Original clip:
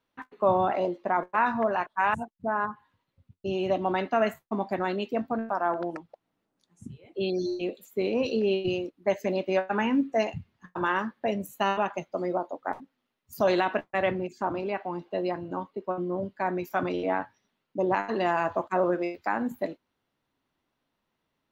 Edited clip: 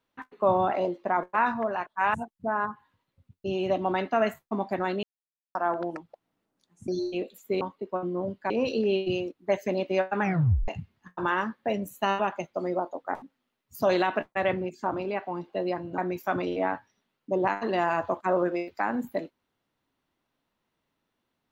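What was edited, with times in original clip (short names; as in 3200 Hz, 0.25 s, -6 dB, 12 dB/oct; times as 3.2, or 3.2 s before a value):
1.54–2.01 gain -3 dB
5.03–5.55 mute
6.88–7.35 cut
9.79 tape stop 0.47 s
15.56–16.45 move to 8.08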